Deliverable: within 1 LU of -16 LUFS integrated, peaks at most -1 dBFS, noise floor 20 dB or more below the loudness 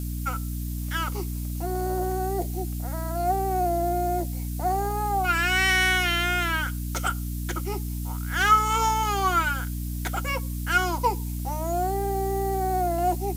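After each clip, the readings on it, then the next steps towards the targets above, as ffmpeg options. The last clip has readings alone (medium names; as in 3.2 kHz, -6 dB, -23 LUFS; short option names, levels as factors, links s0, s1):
hum 60 Hz; highest harmonic 300 Hz; hum level -28 dBFS; noise floor -31 dBFS; noise floor target -46 dBFS; loudness -25.5 LUFS; peak level -8.0 dBFS; loudness target -16.0 LUFS
-> -af "bandreject=f=60:t=h:w=4,bandreject=f=120:t=h:w=4,bandreject=f=180:t=h:w=4,bandreject=f=240:t=h:w=4,bandreject=f=300:t=h:w=4"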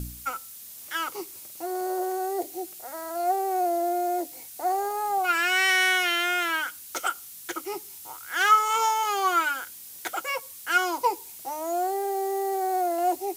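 hum not found; noise floor -44 dBFS; noise floor target -46 dBFS
-> -af "afftdn=nr=6:nf=-44"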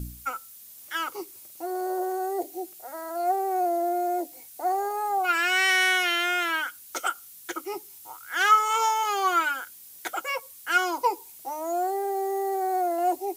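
noise floor -48 dBFS; loudness -26.0 LUFS; peak level -9.0 dBFS; loudness target -16.0 LUFS
-> -af "volume=3.16,alimiter=limit=0.891:level=0:latency=1"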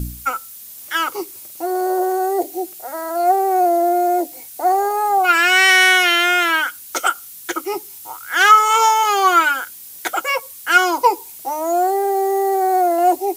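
loudness -16.0 LUFS; peak level -1.0 dBFS; noise floor -38 dBFS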